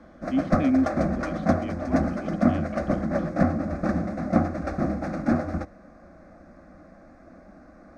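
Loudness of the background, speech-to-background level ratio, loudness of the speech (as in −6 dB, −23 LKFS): −26.5 LKFS, −3.0 dB, −29.5 LKFS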